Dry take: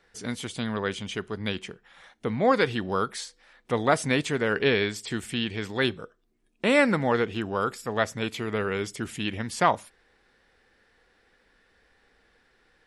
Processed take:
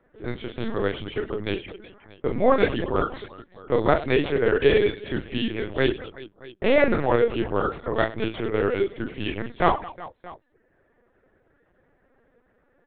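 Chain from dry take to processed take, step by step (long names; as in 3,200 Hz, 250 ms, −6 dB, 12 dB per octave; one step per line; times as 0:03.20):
soft clipping −7.5 dBFS, distortion −27 dB
low-pass that shuts in the quiet parts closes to 1,300 Hz, open at −20.5 dBFS
reverse bouncing-ball delay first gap 40 ms, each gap 1.6×, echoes 5
reverb reduction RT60 0.63 s
linear-prediction vocoder at 8 kHz pitch kept
parametric band 390 Hz +6 dB 1.4 octaves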